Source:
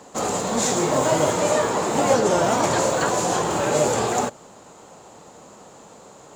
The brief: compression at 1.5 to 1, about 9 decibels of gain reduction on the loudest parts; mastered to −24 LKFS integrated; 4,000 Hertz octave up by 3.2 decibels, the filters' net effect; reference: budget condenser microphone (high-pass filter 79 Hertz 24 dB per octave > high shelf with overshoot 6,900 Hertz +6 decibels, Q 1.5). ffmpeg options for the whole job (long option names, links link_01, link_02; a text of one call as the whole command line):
ffmpeg -i in.wav -af "equalizer=frequency=4000:width_type=o:gain=5.5,acompressor=threshold=-40dB:ratio=1.5,highpass=frequency=79:width=0.5412,highpass=frequency=79:width=1.3066,highshelf=frequency=6900:width_type=q:width=1.5:gain=6,volume=3.5dB" out.wav